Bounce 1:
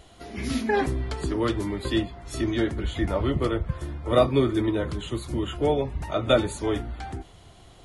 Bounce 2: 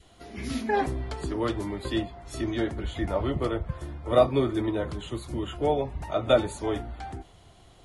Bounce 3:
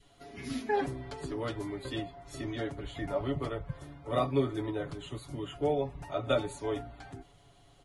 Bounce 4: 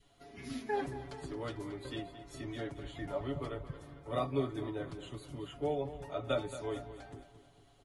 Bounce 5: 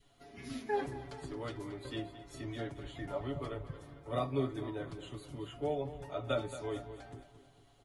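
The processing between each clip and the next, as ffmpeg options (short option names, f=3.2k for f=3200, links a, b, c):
-af "adynamicequalizer=threshold=0.0141:dfrequency=730:dqfactor=1.6:tfrequency=730:tqfactor=1.6:attack=5:release=100:ratio=0.375:range=3:mode=boostabove:tftype=bell,volume=-4dB"
-af "aecho=1:1:7.1:0.76,volume=-7.5dB"
-af "aecho=1:1:224|448|672|896|1120:0.224|0.103|0.0474|0.0218|0.01,volume=-5dB"
-af "flanger=delay=7.5:depth=2.2:regen=82:speed=0.67:shape=triangular,volume=4dB"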